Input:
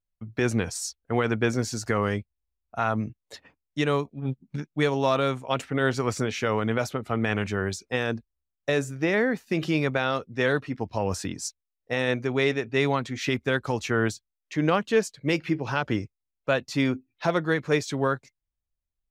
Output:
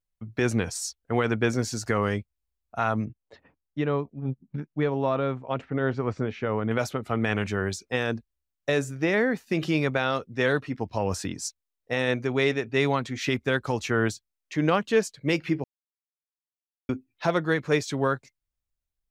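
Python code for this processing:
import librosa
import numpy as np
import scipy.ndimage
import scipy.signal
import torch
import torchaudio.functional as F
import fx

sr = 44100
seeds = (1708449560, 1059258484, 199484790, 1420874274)

y = fx.spacing_loss(x, sr, db_at_10k=35, at=(3.05, 6.71))
y = fx.edit(y, sr, fx.silence(start_s=15.64, length_s=1.25), tone=tone)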